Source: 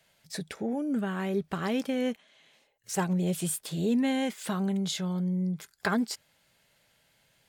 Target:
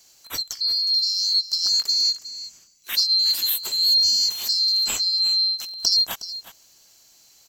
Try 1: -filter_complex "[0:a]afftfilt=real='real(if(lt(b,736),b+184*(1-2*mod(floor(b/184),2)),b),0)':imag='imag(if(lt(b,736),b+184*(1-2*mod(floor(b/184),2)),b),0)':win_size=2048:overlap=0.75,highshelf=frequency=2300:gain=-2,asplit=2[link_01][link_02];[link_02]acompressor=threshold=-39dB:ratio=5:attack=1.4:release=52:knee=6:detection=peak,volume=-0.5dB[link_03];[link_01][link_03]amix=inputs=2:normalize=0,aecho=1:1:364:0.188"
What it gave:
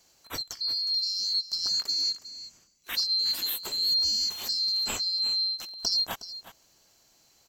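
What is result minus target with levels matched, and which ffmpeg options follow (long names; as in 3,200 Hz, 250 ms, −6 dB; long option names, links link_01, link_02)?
2,000 Hz band +3.5 dB
-filter_complex "[0:a]afftfilt=real='real(if(lt(b,736),b+184*(1-2*mod(floor(b/184),2)),b),0)':imag='imag(if(lt(b,736),b+184*(1-2*mod(floor(b/184),2)),b),0)':win_size=2048:overlap=0.75,highshelf=frequency=2300:gain=8.5,asplit=2[link_01][link_02];[link_02]acompressor=threshold=-39dB:ratio=5:attack=1.4:release=52:knee=6:detection=peak,volume=-0.5dB[link_03];[link_01][link_03]amix=inputs=2:normalize=0,aecho=1:1:364:0.188"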